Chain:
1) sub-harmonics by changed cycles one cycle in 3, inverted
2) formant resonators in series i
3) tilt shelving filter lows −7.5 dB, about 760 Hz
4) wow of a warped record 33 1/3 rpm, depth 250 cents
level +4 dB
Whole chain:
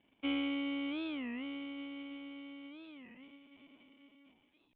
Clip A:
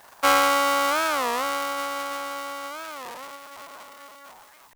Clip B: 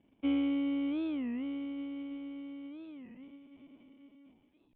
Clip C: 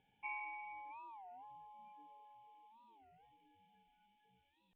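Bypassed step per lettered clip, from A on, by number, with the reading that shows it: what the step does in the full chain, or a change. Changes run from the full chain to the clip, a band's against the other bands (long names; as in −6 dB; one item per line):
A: 2, 250 Hz band −19.5 dB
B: 3, 250 Hz band +9.5 dB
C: 1, 1 kHz band +30.5 dB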